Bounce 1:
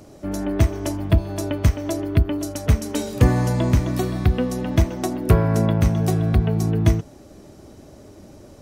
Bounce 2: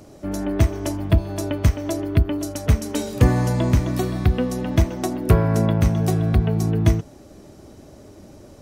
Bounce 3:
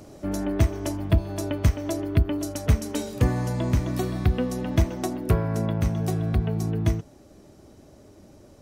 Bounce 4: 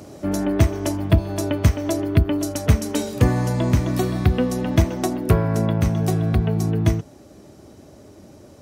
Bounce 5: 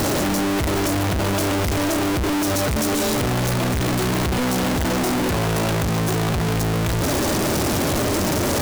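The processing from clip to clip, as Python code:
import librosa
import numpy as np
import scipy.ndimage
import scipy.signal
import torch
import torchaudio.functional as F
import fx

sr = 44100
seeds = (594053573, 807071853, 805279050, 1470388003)

y1 = x
y2 = fx.rider(y1, sr, range_db=4, speed_s=0.5)
y2 = F.gain(torch.from_numpy(y2), -4.5).numpy()
y3 = scipy.signal.sosfilt(scipy.signal.butter(2, 65.0, 'highpass', fs=sr, output='sos'), y2)
y3 = F.gain(torch.from_numpy(y3), 5.5).numpy()
y4 = np.sign(y3) * np.sqrt(np.mean(np.square(y3)))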